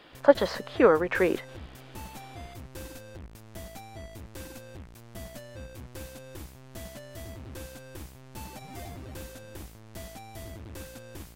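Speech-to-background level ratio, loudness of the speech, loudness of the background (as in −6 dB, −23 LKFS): 19.5 dB, −24.5 LKFS, −44.0 LKFS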